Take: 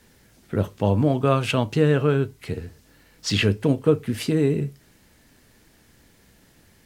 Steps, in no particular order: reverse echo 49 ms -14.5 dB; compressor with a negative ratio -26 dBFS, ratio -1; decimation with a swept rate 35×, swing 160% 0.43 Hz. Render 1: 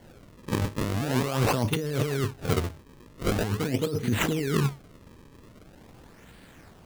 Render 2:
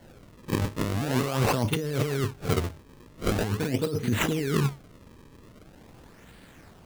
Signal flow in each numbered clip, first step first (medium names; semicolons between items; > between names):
reverse echo > decimation with a swept rate > compressor with a negative ratio; decimation with a swept rate > reverse echo > compressor with a negative ratio